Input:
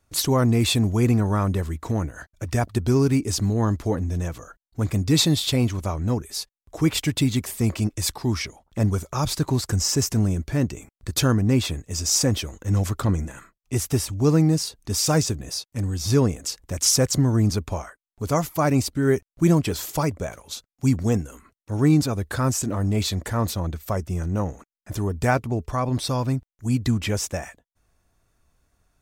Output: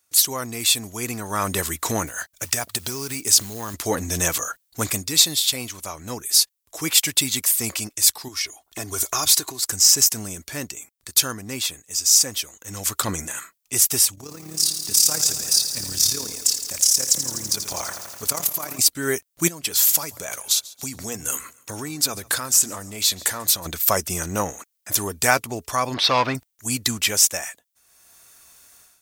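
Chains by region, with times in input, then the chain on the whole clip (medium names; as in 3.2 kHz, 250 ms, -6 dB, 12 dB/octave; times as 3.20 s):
2.07–3.74 s: peaking EQ 300 Hz -3 dB 0.74 oct + compression 12:1, threshold -24 dBFS + short-mantissa float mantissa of 4-bit
8.28–9.63 s: comb 2.8 ms, depth 64% + compression, threshold -27 dBFS
14.15–18.79 s: compression 12:1, threshold -25 dBFS + AM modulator 35 Hz, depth 55% + bit-crushed delay 83 ms, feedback 80%, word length 9-bit, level -10 dB
19.48–23.66 s: hum notches 60/120 Hz + compression 10:1, threshold -31 dBFS + feedback delay 141 ms, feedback 37%, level -22 dB
25.94–26.35 s: distance through air 300 m + overdrive pedal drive 15 dB, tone 4.3 kHz, clips at -14.5 dBFS
whole clip: tilt EQ +4.5 dB/octave; level rider gain up to 14 dB; trim -1 dB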